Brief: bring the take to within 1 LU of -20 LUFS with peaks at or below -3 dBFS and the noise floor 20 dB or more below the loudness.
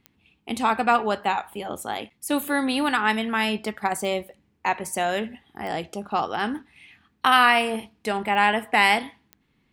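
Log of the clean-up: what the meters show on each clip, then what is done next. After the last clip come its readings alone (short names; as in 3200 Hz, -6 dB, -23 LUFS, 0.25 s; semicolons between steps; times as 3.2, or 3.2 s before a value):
clicks 5; loudness -23.5 LUFS; peak -4.5 dBFS; loudness target -20.0 LUFS
-> de-click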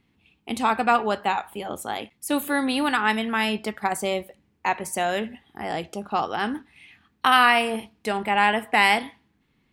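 clicks 0; loudness -23.5 LUFS; peak -4.5 dBFS; loudness target -20.0 LUFS
-> gain +3.5 dB; limiter -3 dBFS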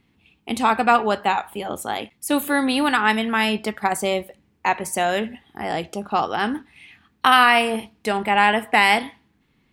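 loudness -20.5 LUFS; peak -3.0 dBFS; noise floor -65 dBFS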